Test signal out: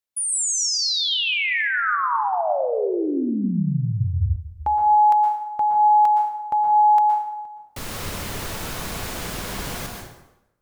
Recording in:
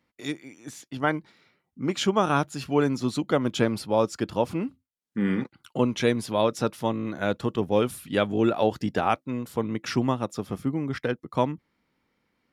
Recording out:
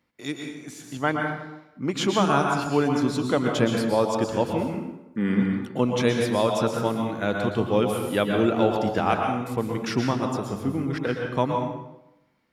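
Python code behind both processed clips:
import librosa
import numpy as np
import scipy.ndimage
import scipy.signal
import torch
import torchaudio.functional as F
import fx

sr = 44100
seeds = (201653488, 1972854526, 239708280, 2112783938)

y = fx.rev_plate(x, sr, seeds[0], rt60_s=0.91, hf_ratio=0.75, predelay_ms=105, drr_db=1.5)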